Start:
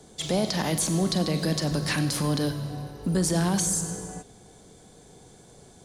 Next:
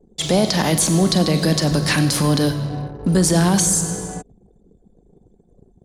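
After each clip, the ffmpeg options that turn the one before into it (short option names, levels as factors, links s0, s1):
-af "anlmdn=0.1,volume=2.66"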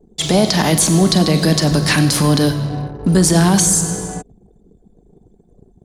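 -af "bandreject=f=530:w=12,volume=1.5"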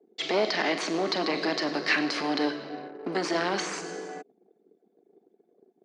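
-af "equalizer=f=1000:t=o:w=0.5:g=-12.5,aeval=exprs='clip(val(0),-1,0.188)':c=same,highpass=f=330:w=0.5412,highpass=f=330:w=1.3066,equalizer=f=540:t=q:w=4:g=-4,equalizer=f=1100:t=q:w=4:g=5,equalizer=f=2100:t=q:w=4:g=4,equalizer=f=3500:t=q:w=4:g=-7,lowpass=f=4300:w=0.5412,lowpass=f=4300:w=1.3066,volume=0.562"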